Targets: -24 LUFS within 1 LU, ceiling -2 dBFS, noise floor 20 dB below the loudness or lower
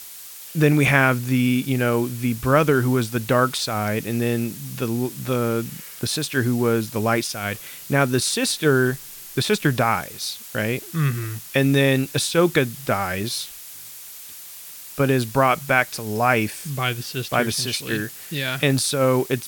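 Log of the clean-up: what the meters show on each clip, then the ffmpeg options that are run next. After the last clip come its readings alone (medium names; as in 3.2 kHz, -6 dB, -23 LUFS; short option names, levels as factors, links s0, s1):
noise floor -39 dBFS; noise floor target -42 dBFS; loudness -21.5 LUFS; peak level -2.0 dBFS; loudness target -24.0 LUFS
-> -af "afftdn=nr=6:nf=-39"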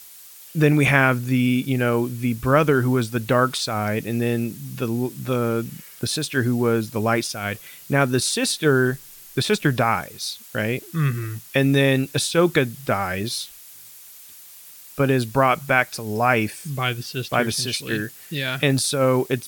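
noise floor -44 dBFS; loudness -21.5 LUFS; peak level -2.0 dBFS; loudness target -24.0 LUFS
-> -af "volume=0.75"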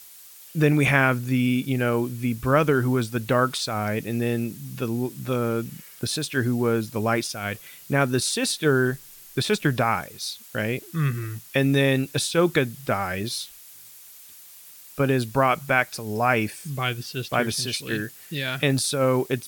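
loudness -24.0 LUFS; peak level -4.5 dBFS; noise floor -47 dBFS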